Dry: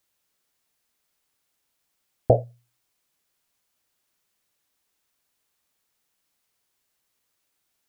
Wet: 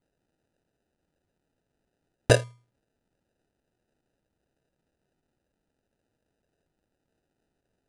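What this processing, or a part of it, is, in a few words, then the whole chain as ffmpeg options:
crushed at another speed: -af "asetrate=88200,aresample=44100,acrusher=samples=20:mix=1:aa=0.000001,asetrate=22050,aresample=44100"

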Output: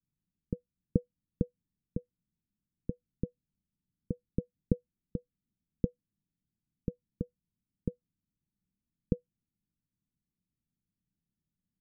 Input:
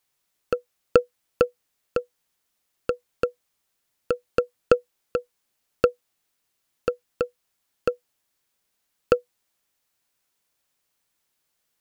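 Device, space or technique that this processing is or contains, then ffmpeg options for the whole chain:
the neighbour's flat through the wall: -af "lowpass=frequency=240:width=0.5412,lowpass=frequency=240:width=1.3066,equalizer=frequency=180:width_type=o:width=0.64:gain=5,volume=4dB"

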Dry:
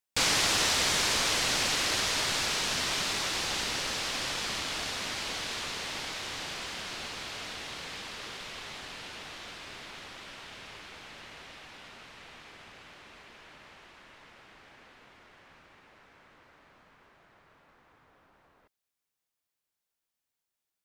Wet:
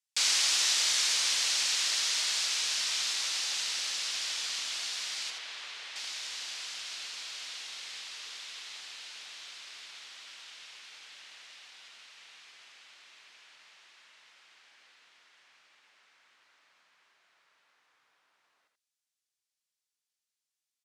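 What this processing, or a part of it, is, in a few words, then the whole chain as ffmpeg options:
piezo pickup straight into a mixer: -filter_complex "[0:a]asettb=1/sr,asplit=3[link_01][link_02][link_03];[link_01]atrim=end=5.304[link_04];[link_02]atrim=start=5.3:end=5.96,asetpts=PTS-STARTPTS,afade=type=in:duration=0.004:curve=qsin,afade=type=out:start_time=0.656:duration=0.004:curve=qsin,bass=frequency=250:gain=-9,treble=frequency=4000:gain=-13[link_05];[link_03]atrim=start=5.956[link_06];[link_04][link_05]acrossfade=duration=0.004:curve1=hsin:curve2=qsin[link_07];[link_07][link_06]acrossfade=duration=0.004:curve1=qsin:curve2=hsin,lowpass=6400,aderivative,aecho=1:1:82:0.447,volume=5.5dB"

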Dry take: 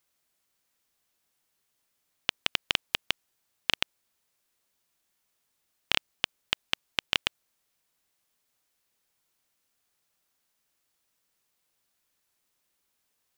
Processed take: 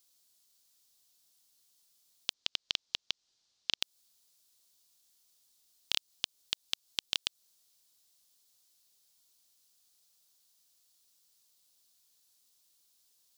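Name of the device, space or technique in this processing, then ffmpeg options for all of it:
over-bright horn tweeter: -filter_complex "[0:a]highshelf=frequency=3000:width_type=q:width=1.5:gain=11,alimiter=limit=-5dB:level=0:latency=1:release=173,asettb=1/sr,asplit=3[link_01][link_02][link_03];[link_01]atrim=end=2.334[link_04];[link_02]atrim=start=2.33:end=3.82,asetpts=PTS-STARTPTS,afade=type=in:duration=0.004:curve=qsin,afade=type=out:start_time=1.486:duration=0.004:curve=qsin,lowpass=frequency=6000:width=0.5412,lowpass=frequency=6000:width=1.3066[link_05];[link_03]atrim=start=3.816[link_06];[link_04][link_05]acrossfade=duration=0.004:curve1=hsin:curve2=qsin[link_07];[link_07][link_06]acrossfade=duration=0.004:curve1=qsin:curve2=hsin,volume=-4dB"

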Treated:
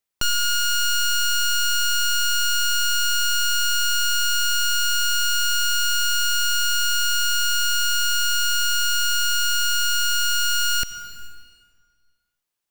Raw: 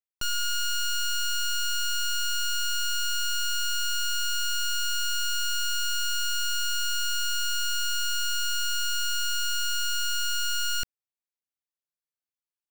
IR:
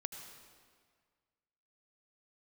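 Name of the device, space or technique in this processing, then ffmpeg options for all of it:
ducked reverb: -filter_complex "[0:a]asplit=3[link_01][link_02][link_03];[1:a]atrim=start_sample=2205[link_04];[link_02][link_04]afir=irnorm=-1:irlink=0[link_05];[link_03]apad=whole_len=560270[link_06];[link_05][link_06]sidechaincompress=threshold=-35dB:ratio=8:attack=16:release=628,volume=5.5dB[link_07];[link_01][link_07]amix=inputs=2:normalize=0,volume=3.5dB"

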